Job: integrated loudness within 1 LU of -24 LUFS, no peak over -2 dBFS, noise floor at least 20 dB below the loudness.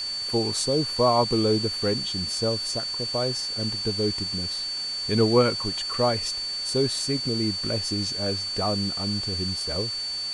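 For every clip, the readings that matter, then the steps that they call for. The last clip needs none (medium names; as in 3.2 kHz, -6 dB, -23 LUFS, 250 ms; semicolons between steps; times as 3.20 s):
steady tone 4.5 kHz; tone level -28 dBFS; noise floor -31 dBFS; noise floor target -45 dBFS; loudness -24.5 LUFS; peak level -7.5 dBFS; loudness target -24.0 LUFS
-> band-stop 4.5 kHz, Q 30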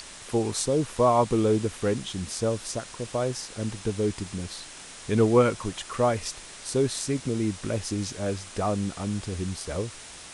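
steady tone not found; noise floor -44 dBFS; noise floor target -48 dBFS
-> noise reduction 6 dB, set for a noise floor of -44 dBFS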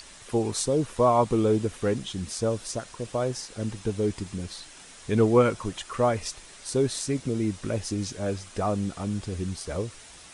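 noise floor -48 dBFS; loudness -27.5 LUFS; peak level -8.5 dBFS; loudness target -24.0 LUFS
-> trim +3.5 dB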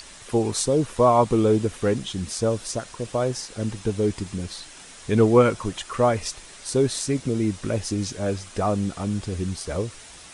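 loudness -24.0 LUFS; peak level -5.0 dBFS; noise floor -44 dBFS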